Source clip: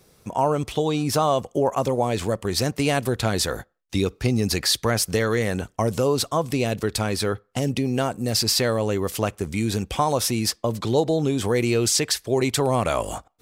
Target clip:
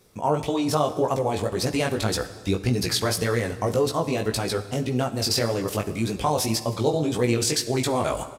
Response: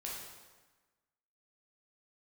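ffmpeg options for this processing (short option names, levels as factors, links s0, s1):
-filter_complex "[0:a]atempo=1.6,flanger=delay=16:depth=4.2:speed=1.8,asplit=2[s0][s1];[1:a]atrim=start_sample=2205,asetrate=34398,aresample=44100[s2];[s1][s2]afir=irnorm=-1:irlink=0,volume=0.299[s3];[s0][s3]amix=inputs=2:normalize=0"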